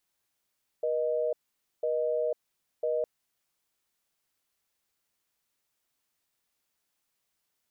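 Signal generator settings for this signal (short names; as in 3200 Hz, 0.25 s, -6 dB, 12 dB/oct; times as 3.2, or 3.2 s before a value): call progress tone busy tone, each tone -28.5 dBFS 2.21 s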